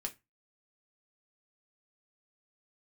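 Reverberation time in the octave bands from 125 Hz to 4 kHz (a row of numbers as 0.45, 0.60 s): 0.35, 0.25, 0.20, 0.20, 0.20, 0.20 s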